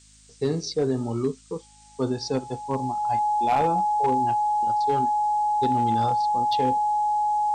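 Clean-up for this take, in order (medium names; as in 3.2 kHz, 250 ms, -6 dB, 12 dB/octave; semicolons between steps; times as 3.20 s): clip repair -15.5 dBFS; de-hum 52.7 Hz, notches 5; band-stop 840 Hz, Q 30; noise reduction 20 dB, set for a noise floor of -51 dBFS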